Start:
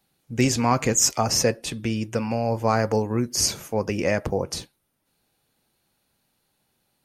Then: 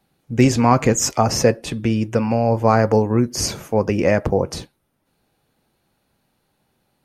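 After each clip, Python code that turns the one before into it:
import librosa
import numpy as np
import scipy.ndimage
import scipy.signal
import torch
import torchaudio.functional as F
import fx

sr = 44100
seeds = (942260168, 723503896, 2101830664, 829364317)

y = fx.high_shelf(x, sr, hz=2500.0, db=-9.5)
y = y * librosa.db_to_amplitude(7.0)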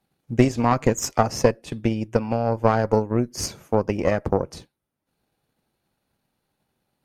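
y = fx.tube_stage(x, sr, drive_db=6.0, bias=0.7)
y = fx.transient(y, sr, attack_db=6, sustain_db=-5)
y = y * librosa.db_to_amplitude(-3.5)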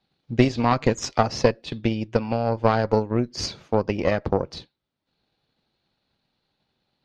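y = fx.lowpass_res(x, sr, hz=4100.0, q=3.0)
y = y * librosa.db_to_amplitude(-1.0)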